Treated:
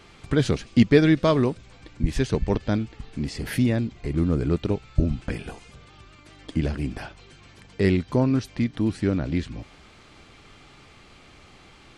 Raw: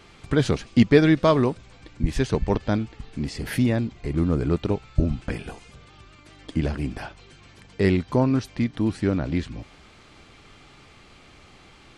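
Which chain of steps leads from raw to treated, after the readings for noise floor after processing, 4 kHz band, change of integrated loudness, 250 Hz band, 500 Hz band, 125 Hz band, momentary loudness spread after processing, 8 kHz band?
−51 dBFS, 0.0 dB, −0.5 dB, −0.5 dB, −1.0 dB, 0.0 dB, 15 LU, 0.0 dB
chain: dynamic equaliser 920 Hz, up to −4 dB, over −39 dBFS, Q 1.1

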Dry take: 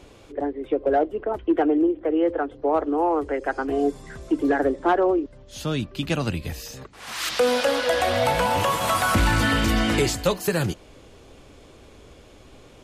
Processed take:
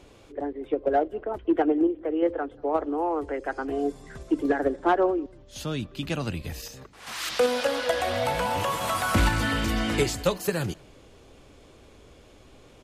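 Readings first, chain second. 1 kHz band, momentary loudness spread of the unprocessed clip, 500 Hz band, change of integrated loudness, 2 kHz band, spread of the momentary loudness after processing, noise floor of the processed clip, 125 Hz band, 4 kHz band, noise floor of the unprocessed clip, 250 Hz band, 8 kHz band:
−4.0 dB, 11 LU, −3.5 dB, −4.0 dB, −4.5 dB, 12 LU, −53 dBFS, −4.0 dB, −4.5 dB, −49 dBFS, −3.5 dB, −4.0 dB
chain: in parallel at −2 dB: output level in coarse steps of 19 dB
on the sum: slap from a distant wall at 32 metres, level −28 dB
level −6 dB

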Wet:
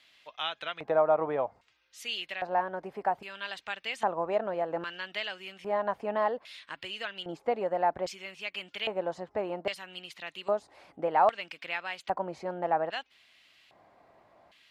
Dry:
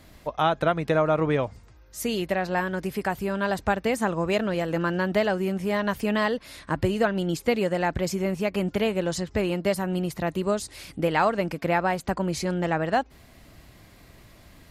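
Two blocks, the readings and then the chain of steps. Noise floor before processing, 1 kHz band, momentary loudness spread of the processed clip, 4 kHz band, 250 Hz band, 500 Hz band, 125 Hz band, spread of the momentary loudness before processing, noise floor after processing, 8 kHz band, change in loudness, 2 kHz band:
−52 dBFS, −3.0 dB, 12 LU, −1.5 dB, −16.5 dB, −5.5 dB, −20.0 dB, 6 LU, −68 dBFS, −15.5 dB, −6.5 dB, −7.5 dB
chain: auto-filter band-pass square 0.62 Hz 770–3,000 Hz
level +2.5 dB

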